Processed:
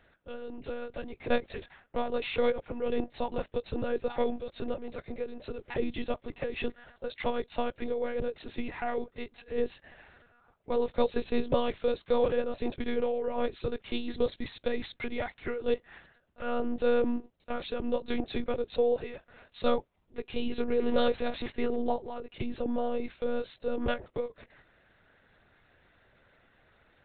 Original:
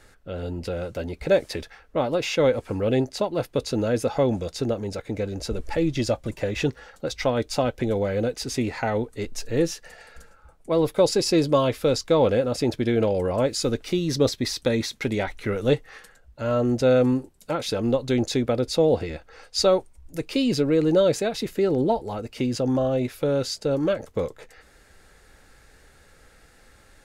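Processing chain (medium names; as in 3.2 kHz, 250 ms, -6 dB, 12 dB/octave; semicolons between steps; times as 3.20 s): 20.81–21.51 s: jump at every zero crossing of -30.5 dBFS; high-pass 190 Hz 12 dB/octave; monotone LPC vocoder at 8 kHz 240 Hz; trim -6.5 dB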